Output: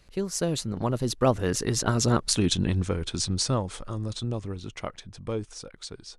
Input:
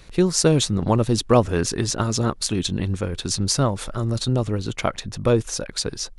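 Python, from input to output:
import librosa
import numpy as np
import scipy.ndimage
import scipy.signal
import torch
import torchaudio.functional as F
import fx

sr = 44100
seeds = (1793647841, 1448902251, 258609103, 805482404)

y = fx.doppler_pass(x, sr, speed_mps=24, closest_m=16.0, pass_at_s=2.36)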